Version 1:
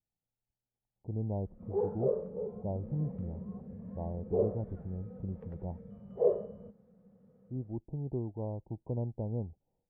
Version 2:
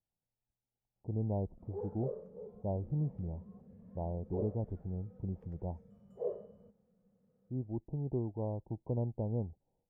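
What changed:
background -11.0 dB; master: remove air absorption 310 m

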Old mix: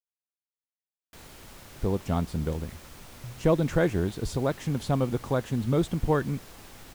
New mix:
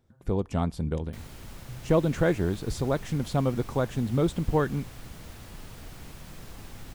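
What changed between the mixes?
speech: entry -1.55 s; background: add tone controls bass +8 dB, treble -1 dB

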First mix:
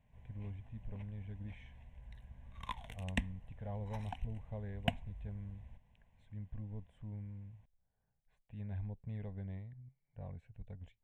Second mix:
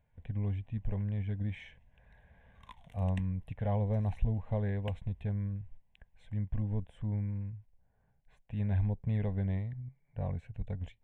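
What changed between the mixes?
speech +11.5 dB; background -10.0 dB

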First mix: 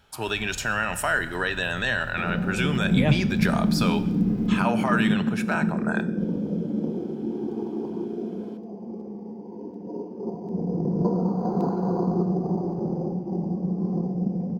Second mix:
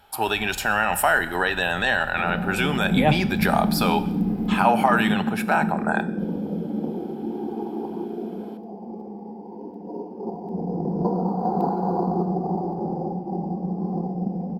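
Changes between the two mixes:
speech +3.0 dB; master: add thirty-one-band EQ 125 Hz -11 dB, 800 Hz +12 dB, 6300 Hz -8 dB, 12500 Hz +12 dB

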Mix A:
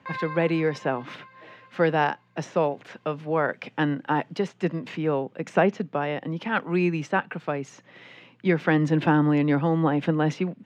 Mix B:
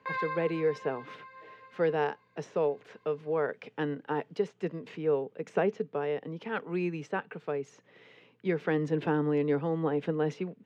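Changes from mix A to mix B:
speech -10.0 dB; master: add bell 440 Hz +13.5 dB 0.26 oct

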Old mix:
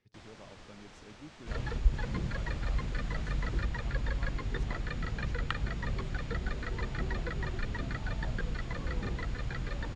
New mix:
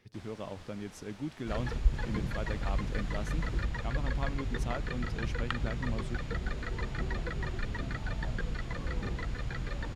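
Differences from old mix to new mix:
speech +12.0 dB; master: remove LPF 8400 Hz 24 dB/oct

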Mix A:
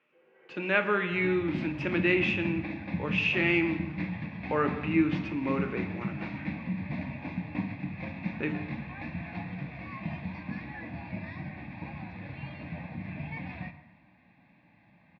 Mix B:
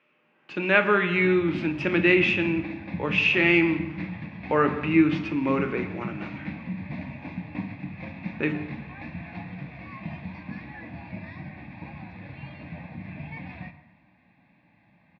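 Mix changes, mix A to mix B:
speech +6.0 dB; first sound: add fixed phaser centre 1100 Hz, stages 4

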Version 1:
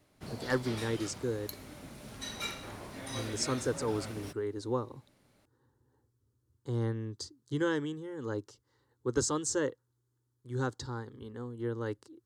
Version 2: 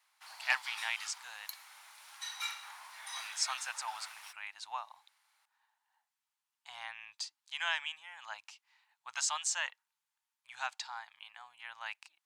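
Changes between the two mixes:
speech: remove fixed phaser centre 670 Hz, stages 6; master: add elliptic high-pass 860 Hz, stop band 50 dB

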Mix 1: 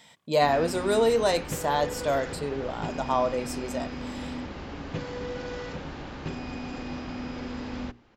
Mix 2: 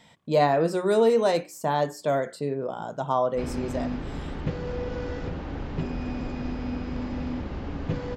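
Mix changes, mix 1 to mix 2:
background: entry +2.95 s; master: add tilt -2 dB/oct

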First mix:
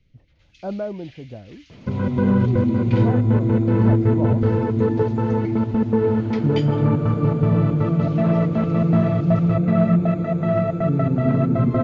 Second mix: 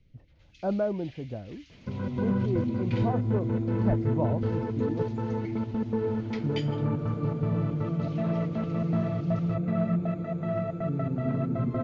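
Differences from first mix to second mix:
first sound -4.0 dB; second sound -10.0 dB

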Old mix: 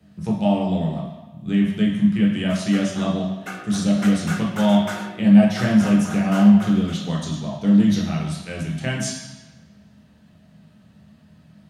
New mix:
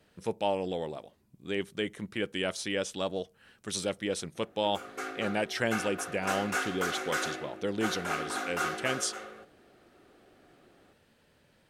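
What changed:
background: entry +2.25 s; reverb: off

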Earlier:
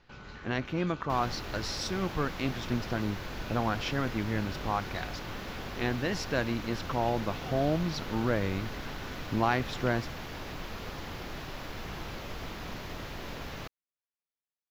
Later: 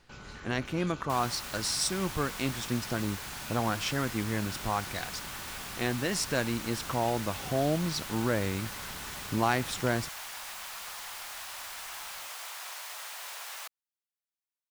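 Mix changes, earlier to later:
second sound: add HPF 760 Hz 24 dB/oct; master: remove running mean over 5 samples

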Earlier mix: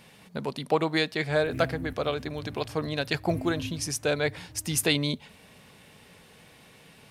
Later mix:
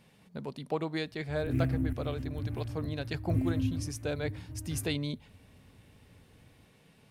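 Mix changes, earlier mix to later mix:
speech -11.5 dB; master: add low shelf 440 Hz +7.5 dB

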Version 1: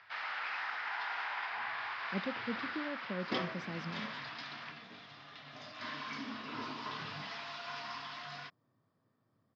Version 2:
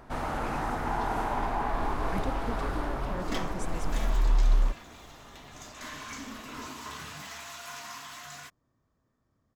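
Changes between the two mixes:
first sound: remove resonant high-pass 1900 Hz, resonance Q 1.8; master: remove Chebyshev band-pass 100–5100 Hz, order 5

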